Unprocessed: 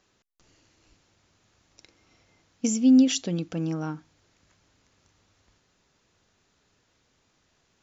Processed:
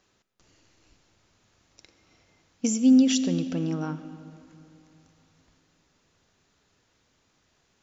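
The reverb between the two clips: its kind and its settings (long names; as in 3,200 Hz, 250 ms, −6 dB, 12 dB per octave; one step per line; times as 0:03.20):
comb and all-pass reverb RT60 3 s, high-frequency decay 0.65×, pre-delay 30 ms, DRR 12 dB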